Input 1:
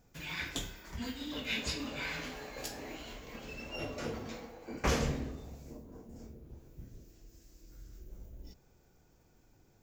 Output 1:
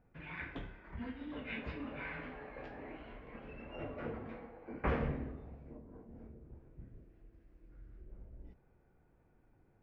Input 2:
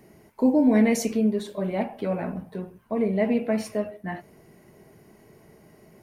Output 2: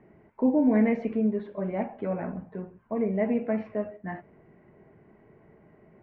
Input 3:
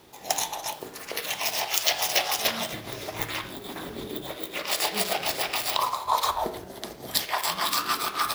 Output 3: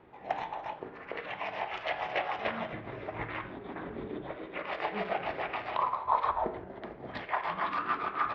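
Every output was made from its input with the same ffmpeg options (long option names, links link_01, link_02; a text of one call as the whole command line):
ffmpeg -i in.wav -af "lowpass=frequency=2200:width=0.5412,lowpass=frequency=2200:width=1.3066,volume=-3dB" out.wav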